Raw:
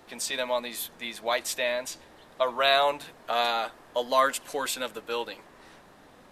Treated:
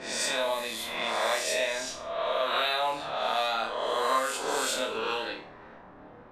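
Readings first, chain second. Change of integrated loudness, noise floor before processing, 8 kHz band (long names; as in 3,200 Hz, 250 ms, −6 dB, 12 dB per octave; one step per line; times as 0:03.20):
−1.0 dB, −54 dBFS, +1.5 dB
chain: peak hold with a rise ahead of every peak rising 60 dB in 1.18 s
downward compressor 3 to 1, threshold −28 dBFS, peak gain reduction 10 dB
low-pass that shuts in the quiet parts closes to 1,300 Hz, open at −25 dBFS
flutter between parallel walls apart 4.6 metres, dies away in 0.38 s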